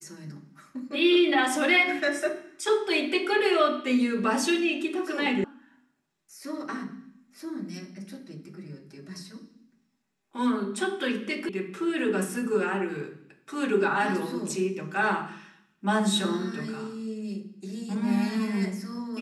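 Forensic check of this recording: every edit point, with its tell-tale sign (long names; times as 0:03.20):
0:05.44: cut off before it has died away
0:11.49: cut off before it has died away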